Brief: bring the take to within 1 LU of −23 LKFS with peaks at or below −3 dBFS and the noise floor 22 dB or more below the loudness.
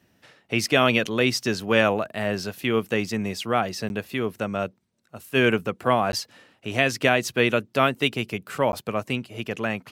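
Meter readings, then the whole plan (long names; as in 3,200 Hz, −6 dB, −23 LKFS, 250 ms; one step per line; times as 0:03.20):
number of dropouts 3; longest dropout 11 ms; integrated loudness −24.0 LKFS; sample peak −4.5 dBFS; target loudness −23.0 LKFS
→ repair the gap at 0:03.89/0:06.12/0:08.72, 11 ms
level +1 dB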